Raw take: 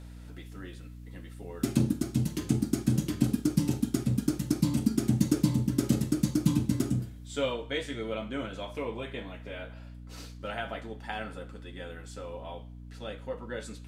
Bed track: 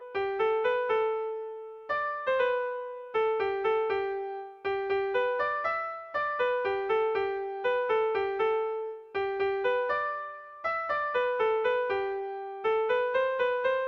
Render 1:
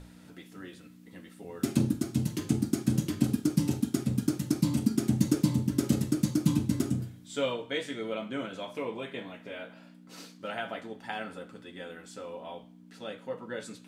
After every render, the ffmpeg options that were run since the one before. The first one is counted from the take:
-af "bandreject=f=60:t=h:w=6,bandreject=f=120:t=h:w=6"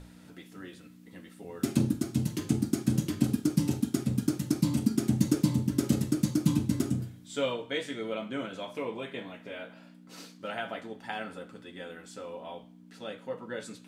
-af anull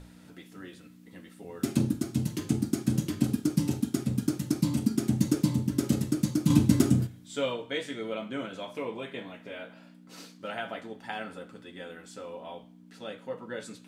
-filter_complex "[0:a]asettb=1/sr,asplit=3[s0][s1][s2];[s0]atrim=end=6.504[s3];[s1]atrim=start=6.5:end=7.07,asetpts=PTS-STARTPTS,afade=t=in:d=0.004:c=qsin,afade=t=out:st=0.566:d=0.004:c=qsin,acontrast=77[s4];[s2]atrim=start=7.066[s5];[s3][s4]acrossfade=d=0.004:c1=hsin:c2=qsin[s6];[s6][s5]acrossfade=d=0.004:c1=qsin:c2=hsin"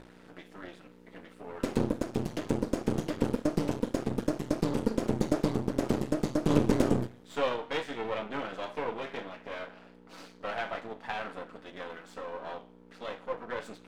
-filter_complex "[0:a]aeval=exprs='max(val(0),0)':c=same,asplit=2[s0][s1];[s1]highpass=f=720:p=1,volume=7.08,asoftclip=type=tanh:threshold=0.447[s2];[s0][s2]amix=inputs=2:normalize=0,lowpass=f=1100:p=1,volume=0.501"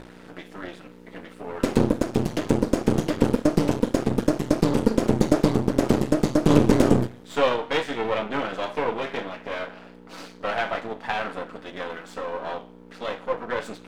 -af "volume=2.66,alimiter=limit=0.794:level=0:latency=1"

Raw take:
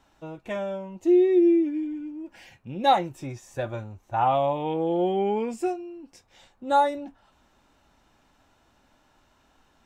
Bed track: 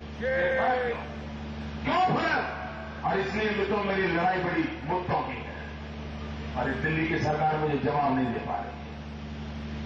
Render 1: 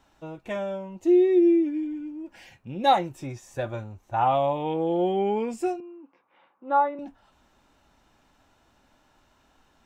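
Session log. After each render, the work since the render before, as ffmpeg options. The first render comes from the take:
-filter_complex "[0:a]asettb=1/sr,asplit=3[s0][s1][s2];[s0]atrim=end=5.804[s3];[s1]atrim=start=5.8:end=6.99,asetpts=PTS-STARTPTS,afade=t=in:d=0.004:c=qsin,afade=t=out:st=1.186:d=0.004:c=qsin,highpass=f=220:w=0.5412,highpass=f=220:w=1.3066,equalizer=f=230:t=q:w=4:g=-9,equalizer=f=410:t=q:w=4:g=-7,equalizer=f=680:t=q:w=4:g=-7,equalizer=f=1100:t=q:w=4:g=6,equalizer=f=1800:t=q:w=4:g=-7,lowpass=f=2200:w=0.5412,lowpass=f=2200:w=1.3066[s4];[s2]atrim=start=6.986[s5];[s3][s4]acrossfade=d=0.004:c1=hsin:c2=qsin[s6];[s6][s5]acrossfade=d=0.004:c1=qsin:c2=hsin"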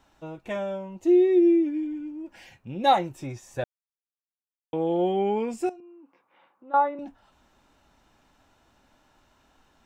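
-filter_complex "[0:a]asettb=1/sr,asplit=3[s0][s1][s2];[s0]atrim=end=5.694[s3];[s1]atrim=start=5.69:end=6.74,asetpts=PTS-STARTPTS,afade=t=in:d=0.004:c=qsin,afade=t=out:st=1.046:d=0.004:c=qsin,acompressor=threshold=0.00282:ratio=2:attack=3.2:release=140:knee=1:detection=peak[s4];[s2]atrim=start=6.736[s5];[s3][s4]acrossfade=d=0.004:c1=hsin:c2=qsin[s6];[s6][s5]acrossfade=d=0.004:c1=qsin:c2=hsin,asplit=3[s7][s8][s9];[s7]atrim=end=3.64,asetpts=PTS-STARTPTS,afade=t=out:st=3.636:d=0.004:c=hsin[s10];[s8]atrim=start=3.64:end=4.73,asetpts=PTS-STARTPTS,volume=0[s11];[s9]atrim=start=4.73,asetpts=PTS-STARTPTS,afade=t=in:d=0.004:c=hsin[s12];[s10][s11][s12]concat=n=3:v=0:a=1"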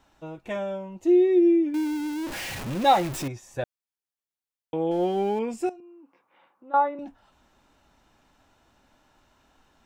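-filter_complex "[0:a]asettb=1/sr,asplit=3[s0][s1][s2];[s0]atrim=end=1.744[s3];[s1]atrim=start=1.74:end=3.28,asetpts=PTS-STARTPTS,afade=t=in:d=0.004:c=qsin,afade=t=out:st=1.536:d=0.004:c=qsin,aeval=exprs='val(0)+0.5*0.0355*sgn(val(0))':c=same[s4];[s2]atrim=start=3.276[s5];[s3][s4]acrossfade=d=0.004:c1=hsin:c2=qsin[s6];[s6][s5]acrossfade=d=0.004:c1=qsin:c2=hsin,asettb=1/sr,asplit=3[s7][s8][s9];[s7]atrim=end=4.914[s10];[s8]atrim=start=4.91:end=5.39,asetpts=PTS-STARTPTS,afade=t=in:d=0.004:c=qsin,afade=t=out:st=0.476:d=0.004:c=qsin,aeval=exprs='sgn(val(0))*max(abs(val(0))-0.00562,0)':c=same[s11];[s9]atrim=start=5.386[s12];[s10][s11]acrossfade=d=0.004:c1=hsin:c2=qsin[s13];[s13][s12]acrossfade=d=0.004:c1=qsin:c2=hsin"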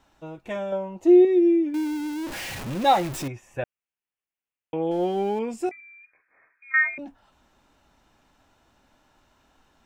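-filter_complex "[0:a]asettb=1/sr,asplit=3[s0][s1][s2];[s0]atrim=end=0.724[s3];[s1]atrim=start=0.72:end=1.25,asetpts=PTS-STARTPTS,afade=t=in:d=0.004:c=qsin,afade=t=out:st=0.526:d=0.004:c=qsin,equalizer=f=720:t=o:w=2.3:g=7.5[s4];[s2]atrim=start=1.246[s5];[s3][s4]acrossfade=d=0.004:c1=hsin:c2=qsin[s6];[s6][s5]acrossfade=d=0.004:c1=qsin:c2=hsin,asettb=1/sr,asplit=3[s7][s8][s9];[s7]atrim=end=3.304[s10];[s8]atrim=start=3.3:end=4.83,asetpts=PTS-STARTPTS,afade=t=in:d=0.004:c=qsin,afade=t=out:st=1.526:d=0.004:c=qsin,highshelf=f=3300:t=q:w=3:g=-6[s11];[s9]atrim=start=4.826[s12];[s10][s11]acrossfade=d=0.004:c1=hsin:c2=qsin[s13];[s13][s12]acrossfade=d=0.004:c1=qsin:c2=hsin,asettb=1/sr,asplit=3[s14][s15][s16];[s14]atrim=end=5.714[s17];[s15]atrim=start=5.71:end=6.98,asetpts=PTS-STARTPTS,afade=t=in:d=0.004:c=qsin,afade=t=out:st=1.266:d=0.004:c=qsin,lowpass=f=2300:t=q:w=0.5098,lowpass=f=2300:t=q:w=0.6013,lowpass=f=2300:t=q:w=0.9,lowpass=f=2300:t=q:w=2.563,afreqshift=-2700[s18];[s16]atrim=start=6.976[s19];[s17][s18]acrossfade=d=0.004:c1=hsin:c2=qsin[s20];[s20][s19]acrossfade=d=0.004:c1=qsin:c2=hsin"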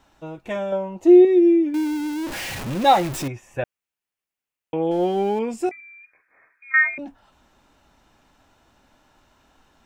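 -af "volume=1.5"

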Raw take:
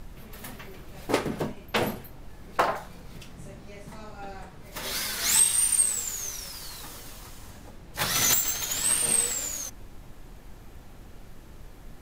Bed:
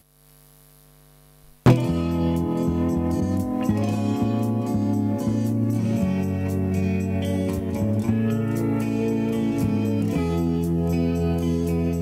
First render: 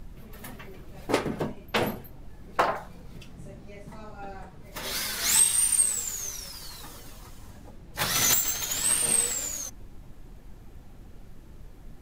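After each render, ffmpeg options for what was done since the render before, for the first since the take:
-af "afftdn=nr=6:nf=-47"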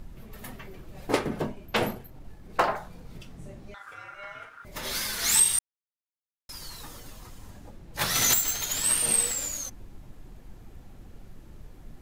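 -filter_complex "[0:a]asettb=1/sr,asplit=3[s0][s1][s2];[s0]atrim=end=1.874[s3];[s1]atrim=start=1.87:end=2.5,asetpts=PTS-STARTPTS,afade=t=in:d=0.004:c=qsin,afade=t=out:st=0.626:d=0.004:c=qsin,aeval=exprs='if(lt(val(0),0),0.708*val(0),val(0))':c=same[s4];[s2]atrim=start=2.496[s5];[s3][s4]acrossfade=d=0.004:c1=hsin:c2=qsin[s6];[s6][s5]acrossfade=d=0.004:c1=qsin:c2=hsin,asettb=1/sr,asplit=3[s7][s8][s9];[s7]atrim=end=3.744[s10];[s8]atrim=start=3.74:end=4.65,asetpts=PTS-STARTPTS,afade=t=in:d=0.004:c=qsin,afade=t=out:st=0.906:d=0.004:c=qsin,aeval=exprs='val(0)*sin(2*PI*1400*n/s)':c=same[s11];[s9]atrim=start=4.646[s12];[s10][s11]acrossfade=d=0.004:c1=hsin:c2=qsin[s13];[s13][s12]acrossfade=d=0.004:c1=qsin:c2=hsin,asplit=3[s14][s15][s16];[s14]atrim=end=5.59,asetpts=PTS-STARTPTS,afade=t=out:st=5.586:d=0.004:c=hsin[s17];[s15]atrim=start=5.59:end=6.49,asetpts=PTS-STARTPTS,volume=0[s18];[s16]atrim=start=6.49,asetpts=PTS-STARTPTS,afade=t=in:d=0.004:c=hsin[s19];[s17][s18][s19]concat=n=3:v=0:a=1"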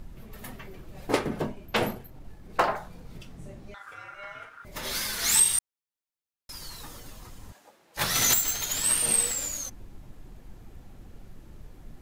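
-filter_complex "[0:a]asettb=1/sr,asplit=3[s0][s1][s2];[s0]atrim=end=7.524[s3];[s1]atrim=start=7.52:end=7.97,asetpts=PTS-STARTPTS,afade=t=in:d=0.004:c=qsin,afade=t=out:st=0.446:d=0.004:c=qsin,highpass=610[s4];[s2]atrim=start=7.966[s5];[s3][s4]acrossfade=d=0.004:c1=hsin:c2=qsin[s6];[s6][s5]acrossfade=d=0.004:c1=qsin:c2=hsin"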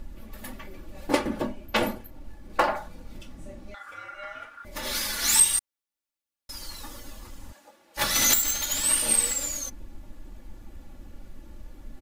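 -af "aecho=1:1:3.5:0.67"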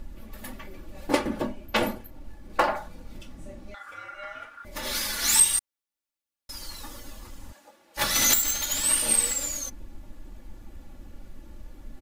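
-af anull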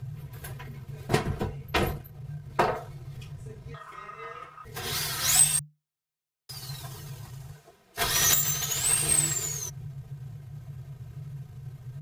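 -af "aeval=exprs='if(lt(val(0),0),0.708*val(0),val(0))':c=same,afreqshift=-150"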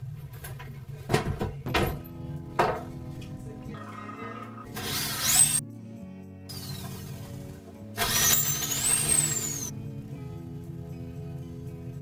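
-filter_complex "[1:a]volume=0.1[s0];[0:a][s0]amix=inputs=2:normalize=0"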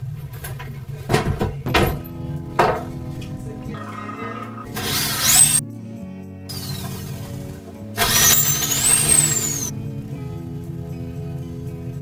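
-af "volume=2.82,alimiter=limit=0.794:level=0:latency=1"

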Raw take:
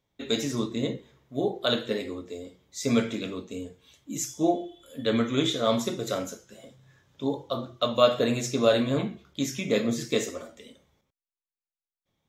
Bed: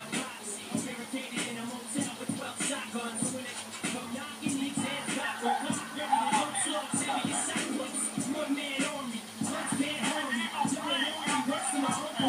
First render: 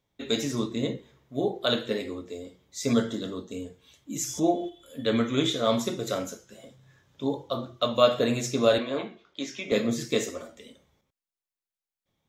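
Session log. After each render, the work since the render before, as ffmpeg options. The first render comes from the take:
-filter_complex "[0:a]asettb=1/sr,asplit=3[s0][s1][s2];[s0]atrim=end=2.934[s3];[s1]atrim=start=2.93:end=3.52,asetpts=PTS-STARTPTS,afade=t=in:d=0.004:c=qsin,afade=t=out:st=0.586:d=0.004:c=qsin,asuperstop=centerf=2400:order=4:qfactor=2.3[s4];[s2]atrim=start=3.516[s5];[s3][s4]acrossfade=d=0.004:c1=hsin:c2=qsin[s6];[s6][s5]acrossfade=d=0.004:c1=qsin:c2=hsin,asplit=3[s7][s8][s9];[s7]afade=t=out:st=4.24:d=0.02[s10];[s8]acompressor=mode=upward:threshold=0.0631:ratio=2.5:attack=3.2:release=140:knee=2.83:detection=peak,afade=t=in:st=4.24:d=0.02,afade=t=out:st=4.68:d=0.02[s11];[s9]afade=t=in:st=4.68:d=0.02[s12];[s10][s11][s12]amix=inputs=3:normalize=0,asettb=1/sr,asplit=3[s13][s14][s15];[s13]atrim=end=8.784[s16];[s14]atrim=start=8.78:end=9.72,asetpts=PTS-STARTPTS,afade=t=in:d=0.004:c=qsin,afade=t=out:st=0.936:d=0.004:c=qsin,acrossover=split=290 5800:gain=0.1 1 0.0631[s17][s18][s19];[s17][s18][s19]amix=inputs=3:normalize=0[s20];[s15]atrim=start=9.716[s21];[s16][s20]acrossfade=d=0.004:c1=hsin:c2=qsin[s22];[s22][s21]acrossfade=d=0.004:c1=qsin:c2=hsin"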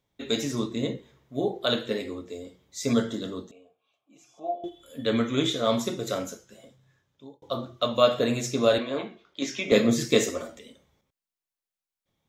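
-filter_complex "[0:a]asettb=1/sr,asplit=3[s0][s1][s2];[s0]atrim=end=3.514[s3];[s1]atrim=start=3.51:end=4.64,asetpts=PTS-STARTPTS,afade=t=in:d=0.004:c=qsin,afade=t=out:st=1.126:d=0.004:c=qsin,asplit=3[s4][s5][s6];[s4]bandpass=f=730:t=q:w=8,volume=1[s7];[s5]bandpass=f=1090:t=q:w=8,volume=0.501[s8];[s6]bandpass=f=2440:t=q:w=8,volume=0.355[s9];[s7][s8][s9]amix=inputs=3:normalize=0[s10];[s2]atrim=start=4.636[s11];[s3][s10]acrossfade=d=0.004:c1=hsin:c2=qsin[s12];[s12][s11]acrossfade=d=0.004:c1=qsin:c2=hsin,asplit=4[s13][s14][s15][s16];[s13]atrim=end=7.42,asetpts=PTS-STARTPTS,afade=t=out:st=6.31:d=1.11[s17];[s14]atrim=start=7.42:end=9.422,asetpts=PTS-STARTPTS,afade=t=in:d=0.004:c=hsin[s18];[s15]atrim=start=9.418:end=10.592,asetpts=PTS-STARTPTS,volume=1.78[s19];[s16]atrim=start=10.588[s20];[s17][s18]concat=n=2:v=0:a=1[s21];[s21][s19]acrossfade=d=0.004:c1=hsin:c2=hsin[s22];[s22][s20]acrossfade=d=0.004:c1=hsin:c2=hsin"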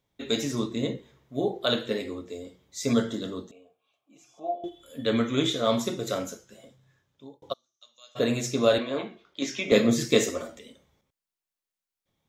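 -filter_complex "[0:a]asplit=3[s0][s1][s2];[s0]afade=t=out:st=7.52:d=0.02[s3];[s1]bandpass=f=6100:t=q:w=11,afade=t=in:st=7.52:d=0.02,afade=t=out:st=8.15:d=0.02[s4];[s2]afade=t=in:st=8.15:d=0.02[s5];[s3][s4][s5]amix=inputs=3:normalize=0"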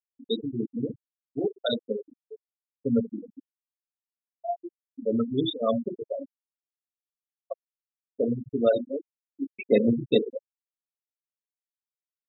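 -af "afftfilt=real='re*gte(hypot(re,im),0.178)':imag='im*gte(hypot(re,im),0.178)':win_size=1024:overlap=0.75"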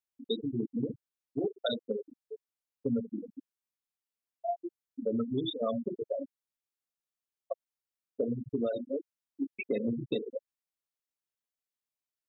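-af "alimiter=limit=0.158:level=0:latency=1:release=320,acompressor=threshold=0.0355:ratio=3"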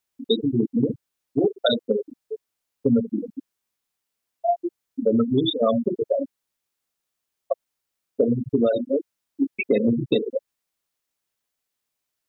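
-af "volume=3.76"

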